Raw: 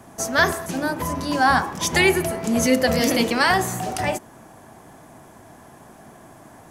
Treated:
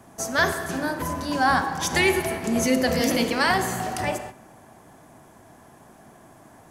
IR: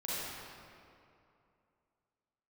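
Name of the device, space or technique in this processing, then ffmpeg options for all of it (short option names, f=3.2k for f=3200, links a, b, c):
keyed gated reverb: -filter_complex "[0:a]asplit=3[a][b][c];[1:a]atrim=start_sample=2205[d];[b][d]afir=irnorm=-1:irlink=0[e];[c]apad=whole_len=295758[f];[e][f]sidechaingate=range=-15dB:threshold=-40dB:ratio=16:detection=peak,volume=-11.5dB[g];[a][g]amix=inputs=2:normalize=0,volume=-4.5dB"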